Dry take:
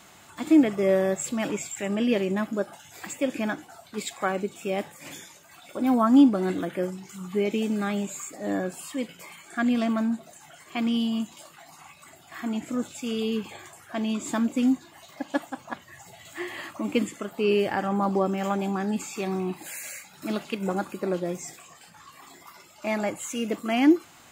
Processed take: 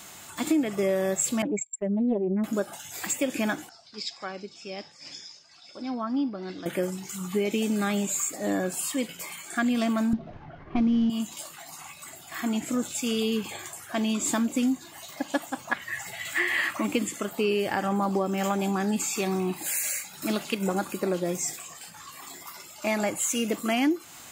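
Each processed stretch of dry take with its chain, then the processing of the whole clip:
1.42–2.44 s: spectral contrast enhancement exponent 2.5 + gate -34 dBFS, range -40 dB + loudspeaker Doppler distortion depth 0.25 ms
3.69–6.66 s: four-pole ladder low-pass 5.3 kHz, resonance 85% + low-pass that closes with the level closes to 2.5 kHz, closed at -29 dBFS
10.13–11.10 s: CVSD coder 32 kbps + level-controlled noise filter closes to 1.5 kHz, open at -24 dBFS + tilt EQ -4.5 dB/octave
15.71–16.87 s: peaking EQ 1.9 kHz +12.5 dB 1.2 oct + band-stop 6.6 kHz, Q 23
whole clip: treble shelf 4.3 kHz +9.5 dB; compression 4:1, threshold -25 dBFS; trim +2.5 dB

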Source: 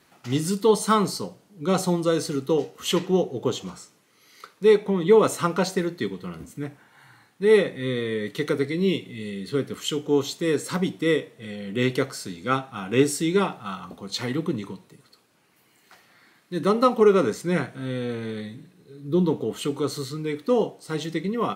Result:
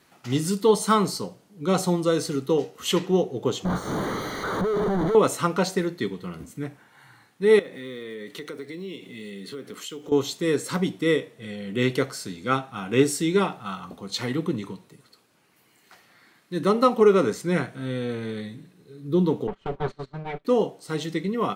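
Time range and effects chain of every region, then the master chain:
3.65–5.15 s: one-bit comparator + boxcar filter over 17 samples
7.59–10.12 s: block-companded coder 7-bit + high-pass 200 Hz + compression 4:1, threshold -34 dBFS
19.47–20.45 s: comb filter that takes the minimum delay 5.2 ms + low-pass 2.5 kHz + gate -35 dBFS, range -20 dB
whole clip: none

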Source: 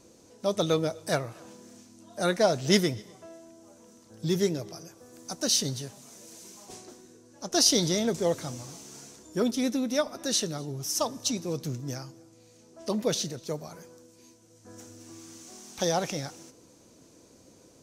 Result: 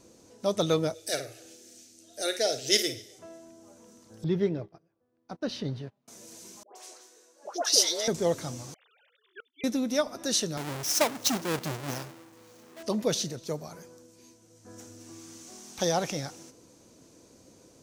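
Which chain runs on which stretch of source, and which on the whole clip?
0.94–3.19 s: tilt shelf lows -4.5 dB, about 1.3 kHz + static phaser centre 430 Hz, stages 4 + flutter echo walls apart 8.9 m, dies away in 0.31 s
4.24–6.08 s: gate -41 dBFS, range -23 dB + distance through air 380 m
6.63–8.08 s: high-pass 460 Hz 24 dB/octave + phase dispersion highs, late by 125 ms, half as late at 1.1 kHz
8.74–9.64 s: formants replaced by sine waves + high-pass 1.4 kHz + inverted gate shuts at -32 dBFS, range -33 dB
10.57–12.83 s: square wave that keeps the level + high-pass 290 Hz 6 dB/octave
whole clip: none

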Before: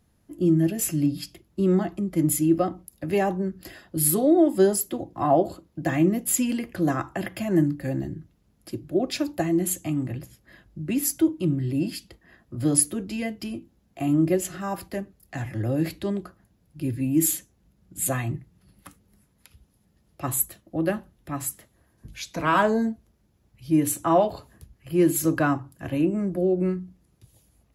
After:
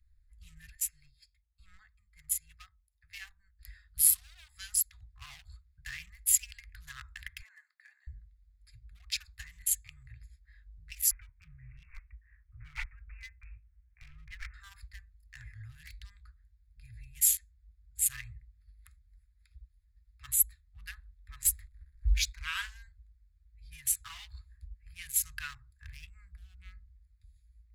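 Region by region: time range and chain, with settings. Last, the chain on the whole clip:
0.75–3.59 s: bass shelf 200 Hz -7.5 dB + upward expansion, over -39 dBFS
7.41–8.07 s: steep high-pass 440 Hz 72 dB/octave + treble shelf 3.8 kHz -8.5 dB
11.11–14.54 s: careless resampling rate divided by 8×, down none, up filtered + low-pass 2.8 kHz
21.45–22.33 s: bass shelf 400 Hz +8 dB + waveshaping leveller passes 2
whole clip: local Wiener filter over 15 samples; inverse Chebyshev band-stop 230–560 Hz, stop band 80 dB; bass shelf 78 Hz +11.5 dB

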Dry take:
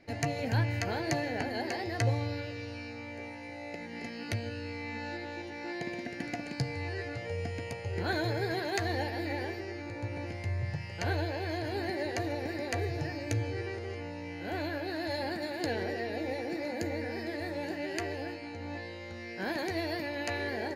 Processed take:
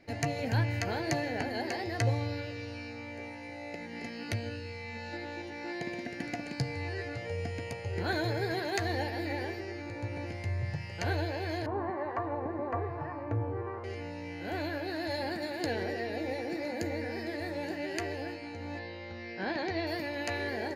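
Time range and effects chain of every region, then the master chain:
4.56–5.13 s: peaking EQ 1.2 kHz -4.5 dB 1.4 oct + de-hum 72.84 Hz, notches 11
11.66–13.84 s: harmonic tremolo 1.1 Hz, depth 50%, crossover 760 Hz + resonant low-pass 1.1 kHz, resonance Q 9.8
18.79–19.87 s: low-pass 5.1 kHz 24 dB/octave + peaking EQ 800 Hz +3 dB 0.25 oct
whole clip: none

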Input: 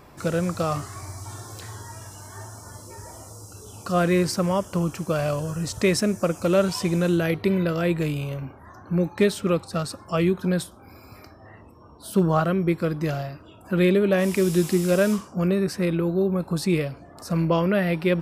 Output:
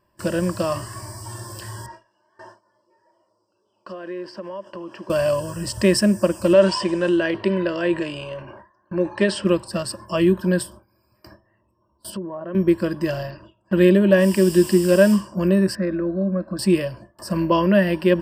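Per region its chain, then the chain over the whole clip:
1.86–5.10 s: Chebyshev high-pass 390 Hz + compression 8:1, threshold -33 dBFS + distance through air 220 m
6.53–9.45 s: tone controls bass -11 dB, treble -2 dB + transient shaper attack +2 dB, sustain +6 dB + Bessel low-pass 5.8 kHz, order 6
12.10–12.55 s: low-pass that closes with the level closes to 670 Hz, closed at -15 dBFS + band-pass 220–7200 Hz + compression, threshold -31 dBFS
13.30–13.73 s: low-pass 7.1 kHz 24 dB/octave + loudspeaker Doppler distortion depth 0.45 ms
15.75–16.59 s: low-pass 4.2 kHz 24 dB/octave + static phaser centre 610 Hz, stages 8
whole clip: gate with hold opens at -33 dBFS; rippled EQ curve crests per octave 1.3, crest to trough 13 dB; trim +1 dB

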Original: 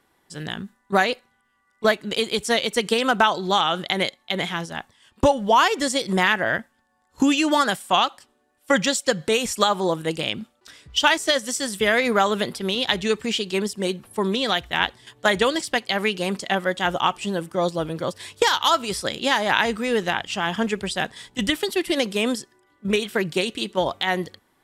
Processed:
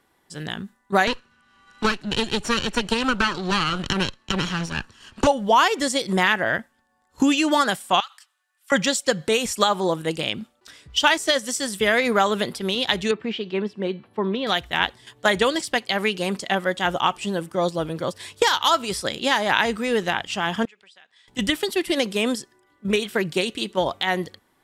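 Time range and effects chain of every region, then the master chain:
1.07–5.27 s: comb filter that takes the minimum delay 0.7 ms + low-pass 7.4 kHz + three bands compressed up and down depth 70%
8.00–8.72 s: high-pass 1.2 kHz 24 dB/octave + compression 5:1, threshold -31 dBFS
13.11–14.47 s: high-pass 130 Hz + distance through air 350 m + de-hum 333.2 Hz, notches 32
20.65–21.28 s: low-pass 2.6 kHz + differentiator + compression 2.5:1, threshold -52 dBFS
whole clip: none

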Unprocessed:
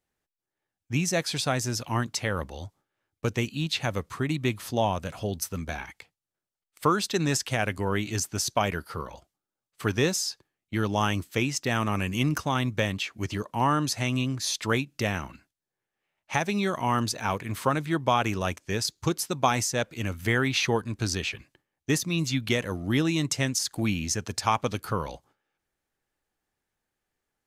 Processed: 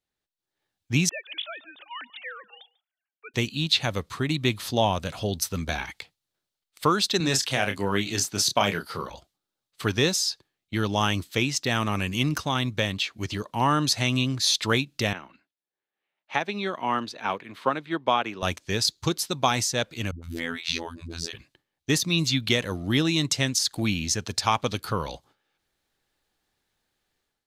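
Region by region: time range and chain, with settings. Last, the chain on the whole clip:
1.09–3.34 s: formants replaced by sine waves + differentiator + delay 144 ms -22 dB
7.20–9.10 s: high-pass 130 Hz + doubling 30 ms -7 dB
15.13–18.43 s: three-band isolator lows -19 dB, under 190 Hz, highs -15 dB, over 3.6 kHz + upward expansion, over -35 dBFS
20.11–21.33 s: phase dispersion highs, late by 124 ms, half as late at 300 Hz + robot voice 83.7 Hz
whole clip: peaking EQ 3.9 kHz +8.5 dB 0.77 oct; level rider; trim -6.5 dB

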